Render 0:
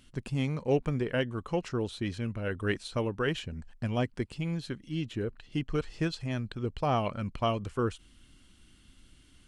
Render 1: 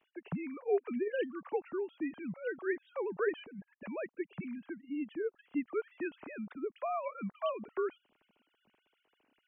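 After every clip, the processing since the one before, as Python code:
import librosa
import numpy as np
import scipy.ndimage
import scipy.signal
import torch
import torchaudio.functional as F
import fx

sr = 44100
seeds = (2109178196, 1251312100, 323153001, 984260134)

y = fx.sine_speech(x, sr)
y = scipy.signal.sosfilt(scipy.signal.butter(4, 2800.0, 'lowpass', fs=sr, output='sos'), y)
y = y * 10.0 ** (-5.5 / 20.0)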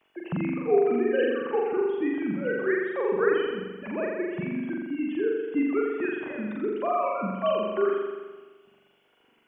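y = fx.room_flutter(x, sr, wall_m=7.3, rt60_s=1.3)
y = y * 10.0 ** (6.5 / 20.0)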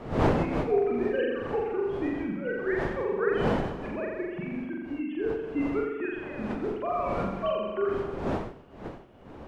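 y = fx.dmg_wind(x, sr, seeds[0], corner_hz=540.0, level_db=-31.0)
y = y * 10.0 ** (-3.5 / 20.0)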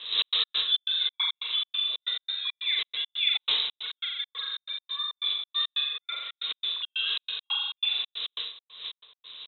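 y = fx.freq_invert(x, sr, carrier_hz=3900)
y = fx.small_body(y, sr, hz=(450.0, 1100.0), ring_ms=25, db=13)
y = fx.step_gate(y, sr, bpm=138, pattern='xx.x.xx.', floor_db=-60.0, edge_ms=4.5)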